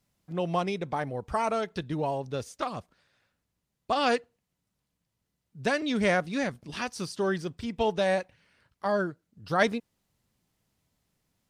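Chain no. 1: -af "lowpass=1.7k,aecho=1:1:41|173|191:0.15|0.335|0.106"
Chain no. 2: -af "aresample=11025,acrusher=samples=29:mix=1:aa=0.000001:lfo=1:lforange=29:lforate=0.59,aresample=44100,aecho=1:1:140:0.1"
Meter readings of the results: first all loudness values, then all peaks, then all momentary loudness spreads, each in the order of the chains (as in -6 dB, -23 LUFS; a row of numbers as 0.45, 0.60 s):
-30.0, -31.5 LUFS; -12.0, -11.0 dBFS; 11, 10 LU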